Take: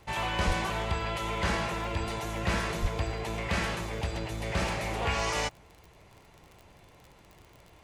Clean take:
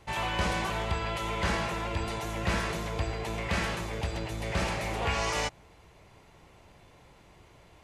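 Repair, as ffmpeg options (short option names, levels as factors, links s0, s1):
-filter_complex "[0:a]adeclick=t=4,asplit=3[s0][s1][s2];[s0]afade=t=out:st=0.46:d=0.02[s3];[s1]highpass=f=140:w=0.5412,highpass=f=140:w=1.3066,afade=t=in:st=0.46:d=0.02,afade=t=out:st=0.58:d=0.02[s4];[s2]afade=t=in:st=0.58:d=0.02[s5];[s3][s4][s5]amix=inputs=3:normalize=0,asplit=3[s6][s7][s8];[s6]afade=t=out:st=2.81:d=0.02[s9];[s7]highpass=f=140:w=0.5412,highpass=f=140:w=1.3066,afade=t=in:st=2.81:d=0.02,afade=t=out:st=2.93:d=0.02[s10];[s8]afade=t=in:st=2.93:d=0.02[s11];[s9][s10][s11]amix=inputs=3:normalize=0"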